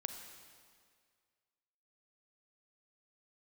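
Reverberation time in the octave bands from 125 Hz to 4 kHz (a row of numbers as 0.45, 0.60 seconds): 2.0, 1.9, 2.0, 2.0, 1.9, 1.8 seconds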